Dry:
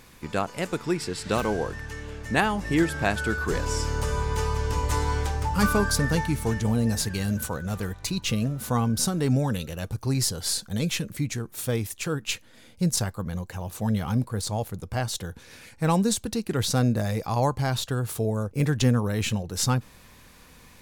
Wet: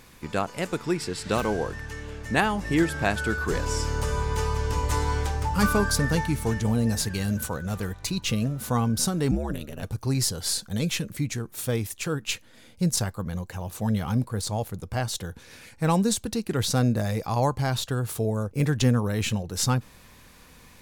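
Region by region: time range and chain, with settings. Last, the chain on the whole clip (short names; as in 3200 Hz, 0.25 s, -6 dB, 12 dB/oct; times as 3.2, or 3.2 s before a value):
9.31–9.83 ring modulator 72 Hz + bell 5200 Hz -6 dB 1.4 oct
whole clip: dry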